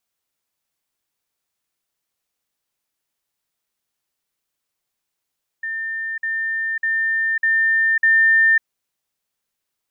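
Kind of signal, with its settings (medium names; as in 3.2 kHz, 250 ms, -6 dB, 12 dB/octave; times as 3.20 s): level ladder 1.8 kHz -23 dBFS, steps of 3 dB, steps 5, 0.55 s 0.05 s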